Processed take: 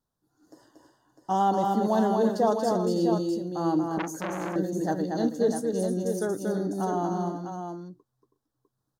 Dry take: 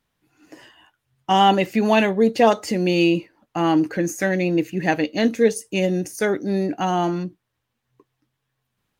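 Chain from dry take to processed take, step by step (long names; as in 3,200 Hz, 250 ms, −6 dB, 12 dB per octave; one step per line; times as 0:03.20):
Butterworth band-reject 2,400 Hz, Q 0.85
multi-tap delay 233/324/361/652 ms −4/−10/−18.5/−7 dB
0:03.98–0:04.56: saturating transformer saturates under 1,500 Hz
level −8 dB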